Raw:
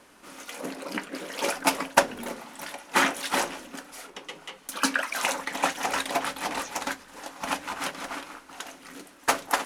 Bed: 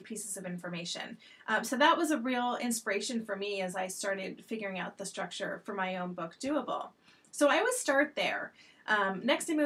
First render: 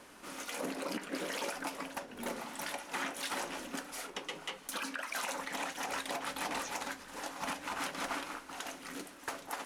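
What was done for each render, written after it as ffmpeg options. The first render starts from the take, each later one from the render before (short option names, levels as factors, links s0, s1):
-af "acompressor=threshold=0.0282:ratio=12,alimiter=level_in=1.33:limit=0.0631:level=0:latency=1:release=51,volume=0.75"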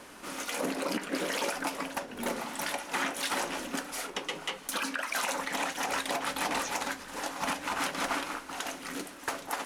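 -af "volume=2"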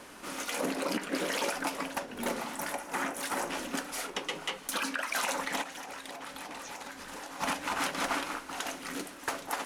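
-filter_complex "[0:a]asettb=1/sr,asplit=3[s0][s1][s2];[s0]atrim=end=2.554[s3];[s1]atrim=start=2.55:end=3.5,asetpts=PTS-STARTPTS,afade=t=in:d=0.004:c=qsin,afade=t=out:st=0.946:d=0.004:c=qsin,equalizer=f=3600:w=0.93:g=-8.5[s4];[s2]atrim=start=3.496[s5];[s3][s4]acrossfade=d=0.004:c1=hsin:c2=qsin[s6];[s6][s5]acrossfade=d=0.004:c1=qsin:c2=hsin,asplit=3[s7][s8][s9];[s7]afade=t=out:st=5.61:d=0.02[s10];[s8]acompressor=threshold=0.0126:ratio=16:attack=3.2:release=140:knee=1:detection=peak,afade=t=in:st=5.61:d=0.02,afade=t=out:st=7.39:d=0.02[s11];[s9]afade=t=in:st=7.39:d=0.02[s12];[s10][s11][s12]amix=inputs=3:normalize=0"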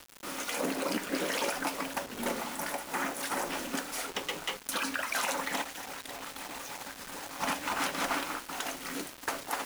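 -af "acrusher=bits=6:mix=0:aa=0.000001"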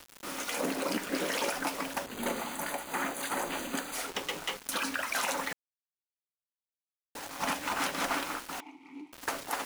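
-filter_complex "[0:a]asettb=1/sr,asplit=3[s0][s1][s2];[s0]atrim=end=2.064[s3];[s1]atrim=start=2.06:end=3.95,asetpts=PTS-STARTPTS,afade=t=in:d=0.004:c=qsin,afade=t=out:st=1.886:d=0.004:c=qsin,asuperstop=centerf=5400:order=8:qfactor=5.4[s4];[s2]atrim=start=3.946[s5];[s3][s4]acrossfade=d=0.004:c1=hsin:c2=qsin[s6];[s6][s5]acrossfade=d=0.004:c1=qsin:c2=hsin,asettb=1/sr,asplit=3[s7][s8][s9];[s7]atrim=end=8.604[s10];[s8]atrim=start=8.6:end=9.13,asetpts=PTS-STARTPTS,afade=t=in:d=0.004:c=qsin,afade=t=out:st=0.526:d=0.004:c=qsin,asplit=3[s11][s12][s13];[s11]bandpass=f=300:t=q:w=8,volume=1[s14];[s12]bandpass=f=870:t=q:w=8,volume=0.501[s15];[s13]bandpass=f=2240:t=q:w=8,volume=0.355[s16];[s14][s15][s16]amix=inputs=3:normalize=0[s17];[s9]atrim=start=9.126[s18];[s10][s17]acrossfade=d=0.004:c1=hsin:c2=qsin[s19];[s19][s18]acrossfade=d=0.004:c1=qsin:c2=hsin,asplit=3[s20][s21][s22];[s20]atrim=end=5.53,asetpts=PTS-STARTPTS,afade=t=out:st=5.526:d=0.004:c=hsin[s23];[s21]atrim=start=5.53:end=7.15,asetpts=PTS-STARTPTS,volume=0[s24];[s22]atrim=start=7.15,asetpts=PTS-STARTPTS,afade=t=in:d=0.004:c=hsin[s25];[s23][s24][s25]concat=n=3:v=0:a=1"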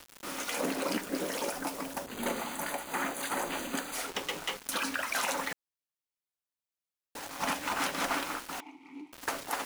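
-filter_complex "[0:a]asettb=1/sr,asplit=3[s0][s1][s2];[s0]atrim=end=1.014[s3];[s1]atrim=start=1.01:end=2.08,asetpts=PTS-STARTPTS,afade=t=in:d=0.004:c=qsin,afade=t=out:st=1.066:d=0.004:c=qsin,equalizer=f=2300:w=0.51:g=-6.5[s4];[s2]atrim=start=2.076[s5];[s3][s4]acrossfade=d=0.004:c1=hsin:c2=qsin[s6];[s6][s5]acrossfade=d=0.004:c1=qsin:c2=hsin"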